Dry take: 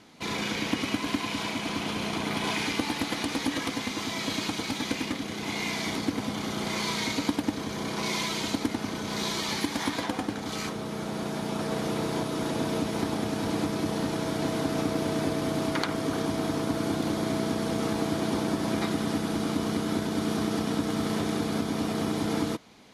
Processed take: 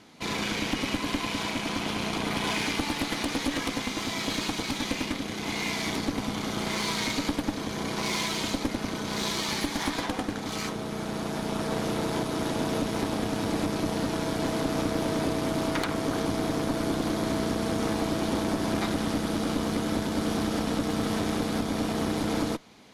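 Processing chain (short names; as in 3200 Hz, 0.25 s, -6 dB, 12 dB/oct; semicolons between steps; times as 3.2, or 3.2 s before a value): tube stage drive 24 dB, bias 0.7; gain +4.5 dB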